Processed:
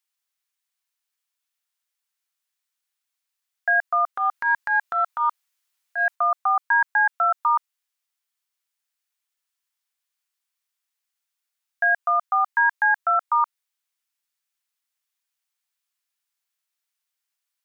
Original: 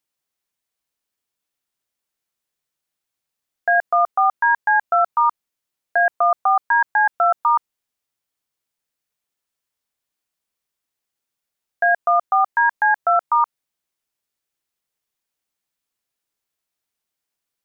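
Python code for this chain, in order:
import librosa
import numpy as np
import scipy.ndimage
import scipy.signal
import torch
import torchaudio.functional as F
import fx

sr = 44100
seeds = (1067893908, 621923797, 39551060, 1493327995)

y = scipy.signal.sosfilt(scipy.signal.butter(2, 1100.0, 'highpass', fs=sr, output='sos'), x)
y = fx.transient(y, sr, attack_db=-9, sustain_db=6, at=(4.15, 6.14), fade=0.02)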